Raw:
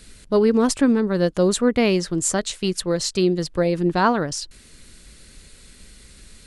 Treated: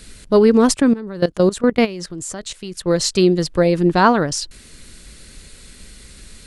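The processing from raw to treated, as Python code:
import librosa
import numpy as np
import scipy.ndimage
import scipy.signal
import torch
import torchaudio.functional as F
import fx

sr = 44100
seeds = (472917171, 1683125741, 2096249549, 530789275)

y = fx.level_steps(x, sr, step_db=17, at=(0.74, 2.86))
y = y * librosa.db_to_amplitude(5.0)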